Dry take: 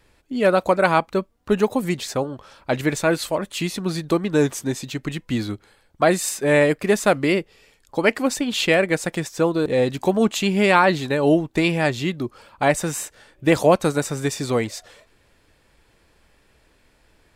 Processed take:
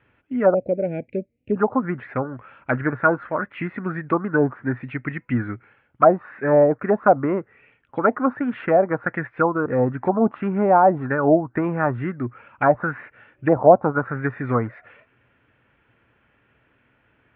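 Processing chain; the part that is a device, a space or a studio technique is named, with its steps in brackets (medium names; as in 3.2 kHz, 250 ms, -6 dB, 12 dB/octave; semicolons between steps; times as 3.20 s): 0.54–1.56 s: Chebyshev band-stop 560–2400 Hz, order 3; envelope filter bass rig (touch-sensitive low-pass 730–3100 Hz down, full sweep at -12.5 dBFS; cabinet simulation 76–2200 Hz, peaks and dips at 120 Hz +10 dB, 250 Hz +6 dB, 1.4 kHz +7 dB); trim -4.5 dB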